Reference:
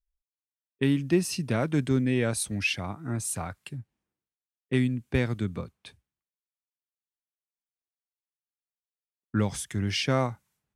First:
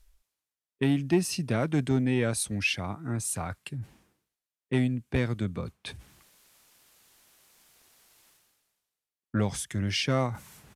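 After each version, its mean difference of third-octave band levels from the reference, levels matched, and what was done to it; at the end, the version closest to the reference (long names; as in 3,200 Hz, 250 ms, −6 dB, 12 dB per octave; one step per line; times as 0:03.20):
1.5 dB: reversed playback
upward compression, threshold −31 dBFS
reversed playback
downsampling to 32,000 Hz
saturating transformer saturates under 240 Hz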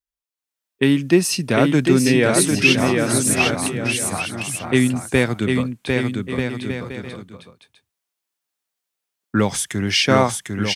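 7.0 dB: high-pass filter 260 Hz 6 dB per octave
automatic gain control gain up to 10 dB
bouncing-ball delay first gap 750 ms, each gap 0.65×, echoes 5
level +2 dB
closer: first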